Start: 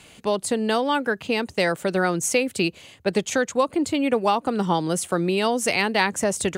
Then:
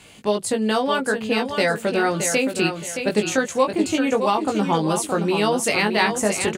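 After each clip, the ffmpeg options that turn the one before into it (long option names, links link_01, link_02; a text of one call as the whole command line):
ffmpeg -i in.wav -filter_complex "[0:a]asplit=2[link_01][link_02];[link_02]adelay=19,volume=-4dB[link_03];[link_01][link_03]amix=inputs=2:normalize=0,aecho=1:1:620|1240|1860|2480:0.422|0.131|0.0405|0.0126" out.wav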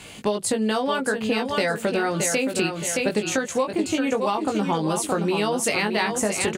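ffmpeg -i in.wav -af "acompressor=threshold=-26dB:ratio=5,volume=5.5dB" out.wav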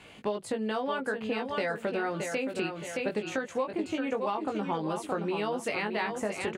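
ffmpeg -i in.wav -af "bass=frequency=250:gain=-4,treble=frequency=4000:gain=-13,volume=-7dB" out.wav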